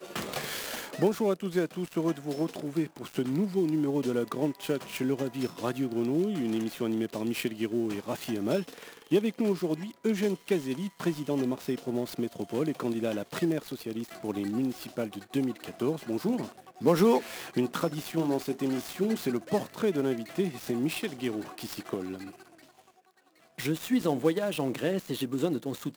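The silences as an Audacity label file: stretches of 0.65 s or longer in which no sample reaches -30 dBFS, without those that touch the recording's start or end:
22.150000	23.590000	silence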